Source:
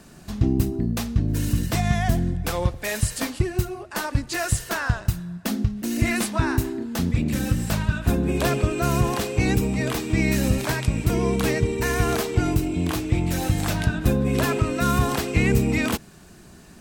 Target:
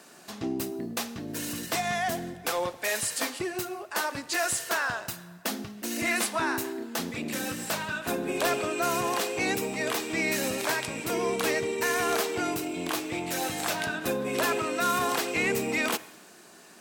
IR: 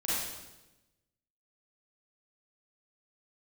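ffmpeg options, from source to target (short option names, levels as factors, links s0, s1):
-filter_complex "[0:a]highpass=420,asoftclip=type=tanh:threshold=0.141,asplit=2[s0][s1];[1:a]atrim=start_sample=2205[s2];[s1][s2]afir=irnorm=-1:irlink=0,volume=0.0596[s3];[s0][s3]amix=inputs=2:normalize=0"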